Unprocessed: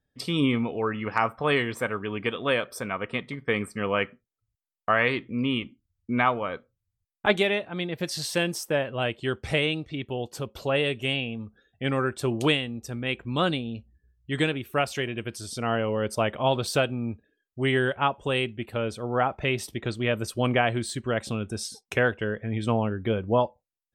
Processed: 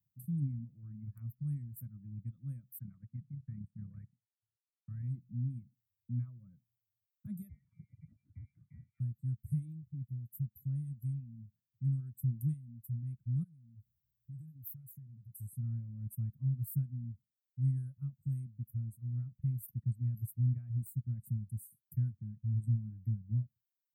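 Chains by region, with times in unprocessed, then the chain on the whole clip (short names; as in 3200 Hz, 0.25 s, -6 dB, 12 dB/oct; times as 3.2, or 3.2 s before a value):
2.79–5.03 AM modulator 33 Hz, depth 40% + overloaded stage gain 24.5 dB + synth low-pass 1800 Hz, resonance Q 3.5
7.49–9 bell 730 Hz -10.5 dB 0.9 oct + inverted band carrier 2500 Hz + sustainer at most 98 dB/s
13.43–15.4 compressor 3:1, threshold -35 dBFS + high shelf 12000 Hz +6.5 dB + core saturation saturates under 1000 Hz
whole clip: HPF 130 Hz 24 dB/oct; reverb removal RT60 1.2 s; inverse Chebyshev band-stop 400–5800 Hz, stop band 60 dB; gain +8.5 dB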